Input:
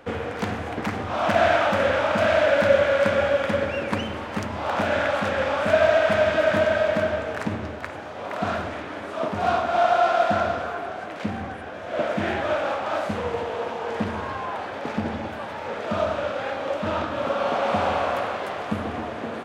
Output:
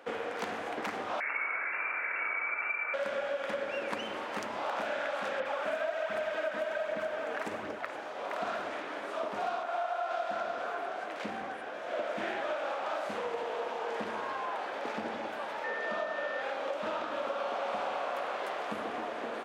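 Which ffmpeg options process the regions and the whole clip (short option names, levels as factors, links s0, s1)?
-filter_complex "[0:a]asettb=1/sr,asplit=3[s0][s1][s2];[s0]atrim=end=1.204[s3];[s1]atrim=start=1.2:end=2.94,asetpts=PTS-STARTPTS,afade=t=in:d=0.004:c=qsin,afade=t=out:st=1.736:d=0.004:c=qsin,highpass=f=820:p=1,lowpass=f=2500:t=q:w=0.5098,lowpass=f=2500:t=q:w=0.6013,lowpass=f=2500:t=q:w=0.9,lowpass=f=2500:t=q:w=2.563,afreqshift=-2900,asplit=2[s4][s5];[s5]adelay=25,volume=0.224[s6];[s4][s6]amix=inputs=2:normalize=0,atrim=end_sample=76734[s7];[s2]atrim=start=2.936[s8];[s3][s7]acrossfade=d=0.004:c1=hsin:c2=qsin[s9];[s9][s8]acrossfade=d=0.004:c1=qsin:c2=hsin,asettb=1/sr,asplit=3[s10][s11][s12];[s10]atrim=end=5.404[s13];[s11]atrim=start=5.4:end=7.88,asetpts=PTS-STARTPTS,afade=t=in:d=0.004:c=qsin,afade=t=out:st=2.476:d=0.004:c=qsin,aphaser=in_gain=1:out_gain=1:delay=4.2:decay=0.41:speed=1.3:type=triangular,acrossover=split=4700[s14][s15];[s15]adelay=50[s16];[s14][s16]amix=inputs=2:normalize=0,atrim=end_sample=109368[s17];[s12]atrim=start=7.876[s18];[s13][s17]acrossfade=d=0.004:c1=hsin:c2=qsin[s19];[s19][s18]acrossfade=d=0.004:c1=qsin:c2=hsin,asettb=1/sr,asplit=3[s20][s21][s22];[s20]atrim=end=9.634[s23];[s21]atrim=start=9.63:end=10.11,asetpts=PTS-STARTPTS,afade=t=in:d=0.004:c=qsin,afade=t=out:st=0.476:d=0.004:c=qsin,highpass=f=500:p=1,equalizer=f=4700:t=o:w=1.9:g=-5.5[s24];[s22]atrim=start=10.106[s25];[s23][s24]acrossfade=d=0.004:c1=hsin:c2=qsin[s26];[s26][s25]acrossfade=d=0.004:c1=qsin:c2=hsin,asettb=1/sr,asplit=3[s27][s28][s29];[s27]atrim=end=15.644[s30];[s28]atrim=start=15.64:end=16.42,asetpts=PTS-STARTPTS,afade=t=in:d=0.004:c=qsin,afade=t=out:st=0.776:d=0.004:c=qsin,highpass=110,lowpass=7200,aeval=exprs='val(0)+0.0316*sin(2*PI*1800*n/s)':c=same[s31];[s29]atrim=start=16.416[s32];[s30][s31]acrossfade=d=0.004:c1=hsin:c2=qsin[s33];[s33][s32]acrossfade=d=0.004:c1=qsin:c2=hsin,highpass=360,acompressor=threshold=0.0447:ratio=6,volume=0.631"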